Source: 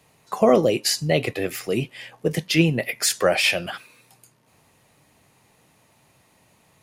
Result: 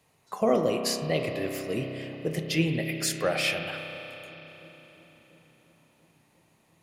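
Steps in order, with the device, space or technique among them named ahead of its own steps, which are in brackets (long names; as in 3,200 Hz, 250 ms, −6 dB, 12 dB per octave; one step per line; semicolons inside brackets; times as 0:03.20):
dub delay into a spring reverb (feedback echo with a low-pass in the loop 345 ms, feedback 80%, low-pass 1,000 Hz, level −22 dB; spring reverb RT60 3.9 s, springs 31 ms, chirp 30 ms, DRR 4 dB)
level −8 dB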